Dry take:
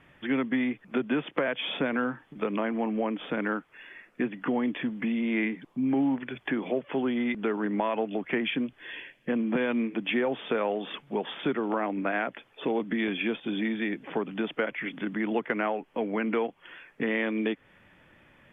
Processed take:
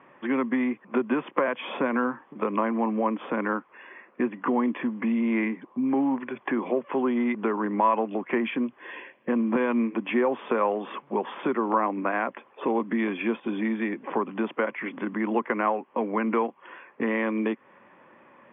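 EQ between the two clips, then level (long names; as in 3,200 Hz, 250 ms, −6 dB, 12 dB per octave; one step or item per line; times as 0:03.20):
dynamic equaliser 550 Hz, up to −5 dB, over −39 dBFS, Q 0.89
loudspeaker in its box 190–2,700 Hz, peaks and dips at 230 Hz +6 dB, 370 Hz +7 dB, 540 Hz +8 dB, 800 Hz +5 dB, 1,100 Hz +9 dB
parametric band 1,000 Hz +6.5 dB 0.27 octaves
0.0 dB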